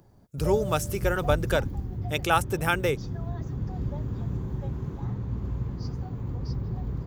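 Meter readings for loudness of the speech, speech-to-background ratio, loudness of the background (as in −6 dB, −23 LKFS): −27.5 LKFS, 5.5 dB, −33.0 LKFS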